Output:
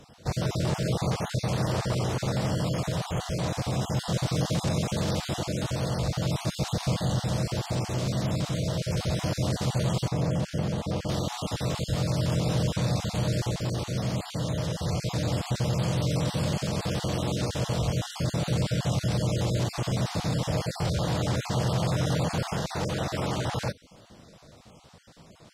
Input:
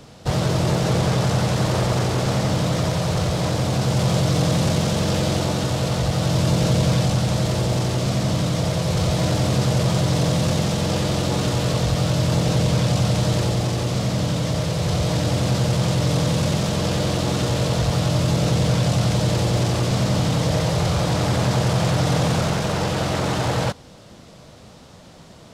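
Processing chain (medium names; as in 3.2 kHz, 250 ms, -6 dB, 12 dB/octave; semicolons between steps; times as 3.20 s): random holes in the spectrogram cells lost 26%; 10.08–11.09 s: treble shelf 2.3 kHz -9 dB; trim -6.5 dB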